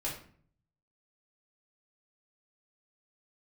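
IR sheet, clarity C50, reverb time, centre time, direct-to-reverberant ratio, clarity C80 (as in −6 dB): 5.5 dB, 0.50 s, 32 ms, −6.0 dB, 10.0 dB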